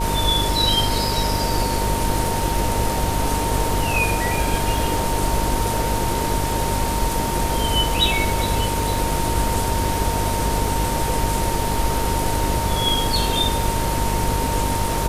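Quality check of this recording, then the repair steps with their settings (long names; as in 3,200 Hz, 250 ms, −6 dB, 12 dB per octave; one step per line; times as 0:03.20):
mains buzz 50 Hz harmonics 10 −26 dBFS
surface crackle 38 per second −28 dBFS
whistle 920 Hz −25 dBFS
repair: click removal
hum removal 50 Hz, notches 10
notch filter 920 Hz, Q 30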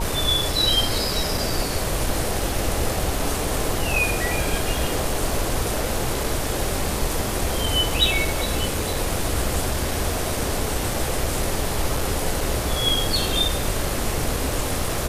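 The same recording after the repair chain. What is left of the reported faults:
none of them is left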